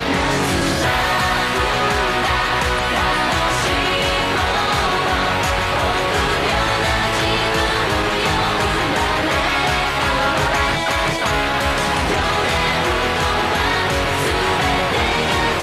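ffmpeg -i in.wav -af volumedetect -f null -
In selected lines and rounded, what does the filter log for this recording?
mean_volume: -18.0 dB
max_volume: -6.3 dB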